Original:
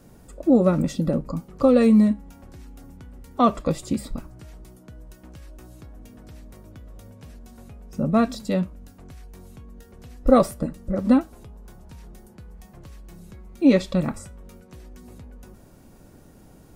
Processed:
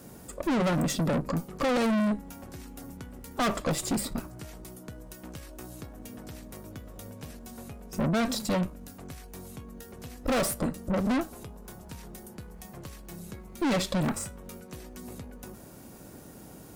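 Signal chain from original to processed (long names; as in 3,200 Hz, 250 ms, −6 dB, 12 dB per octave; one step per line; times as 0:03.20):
high-pass filter 130 Hz 6 dB per octave
high-shelf EQ 8,300 Hz +7.5 dB
tube saturation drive 31 dB, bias 0.6
level +7 dB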